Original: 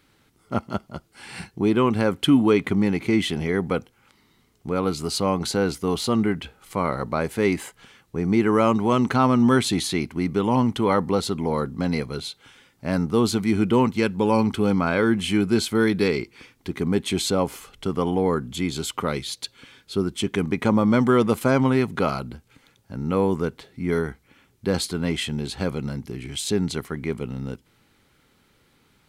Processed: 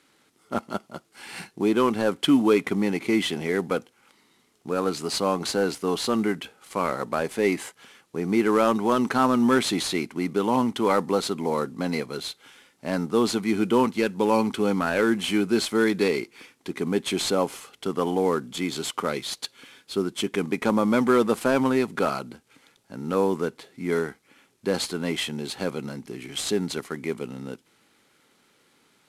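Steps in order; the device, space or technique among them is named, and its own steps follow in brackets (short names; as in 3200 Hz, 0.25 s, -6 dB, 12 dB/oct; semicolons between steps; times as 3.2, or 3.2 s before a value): early wireless headset (HPF 230 Hz 12 dB/oct; CVSD 64 kbps)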